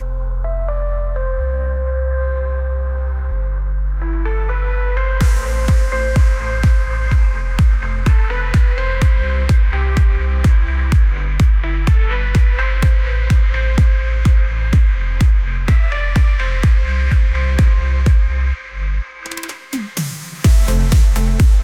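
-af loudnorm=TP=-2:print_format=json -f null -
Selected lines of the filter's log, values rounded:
"input_i" : "-16.6",
"input_tp" : "-2.6",
"input_lra" : "5.1",
"input_thresh" : "-26.7",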